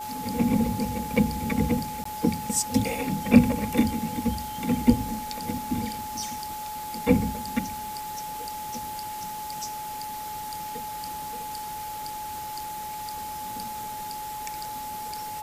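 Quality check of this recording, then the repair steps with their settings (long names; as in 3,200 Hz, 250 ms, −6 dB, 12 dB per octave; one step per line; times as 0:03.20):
whistle 850 Hz −33 dBFS
0:02.04–0:02.05: drop-out 14 ms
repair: notch filter 850 Hz, Q 30
repair the gap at 0:02.04, 14 ms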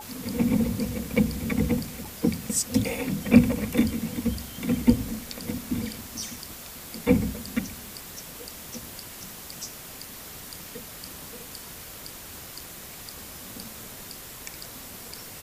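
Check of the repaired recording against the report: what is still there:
none of them is left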